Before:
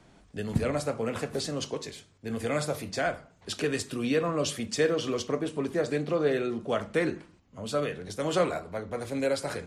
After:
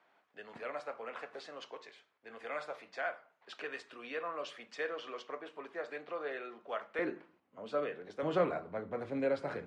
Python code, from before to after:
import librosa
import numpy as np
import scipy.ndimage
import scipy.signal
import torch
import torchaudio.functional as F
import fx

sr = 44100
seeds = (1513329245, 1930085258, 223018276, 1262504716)

y = fx.bandpass_edges(x, sr, low_hz=fx.steps((0.0, 790.0), (6.99, 340.0), (8.23, 140.0)), high_hz=2200.0)
y = y * 10.0 ** (-4.5 / 20.0)